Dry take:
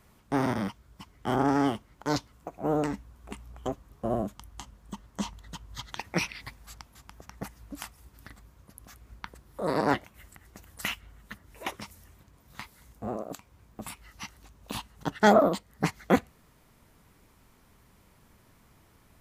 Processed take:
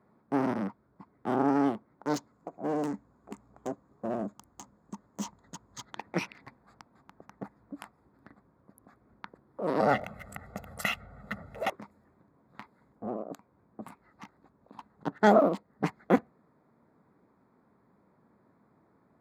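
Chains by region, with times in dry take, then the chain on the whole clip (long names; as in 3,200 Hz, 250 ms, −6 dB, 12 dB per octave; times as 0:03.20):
0:02.14–0:05.85: parametric band 6,700 Hz +14.5 dB 0.8 octaves + hard clipping −25.5 dBFS
0:09.80–0:11.70: low-shelf EQ 60 Hz +10.5 dB + comb filter 1.5 ms, depth 86% + envelope flattener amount 50%
0:14.24–0:14.79: mu-law and A-law mismatch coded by A + compressor whose output falls as the input rises −46 dBFS
whole clip: adaptive Wiener filter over 15 samples; Chebyshev high-pass filter 210 Hz, order 2; high-shelf EQ 2,700 Hz −9 dB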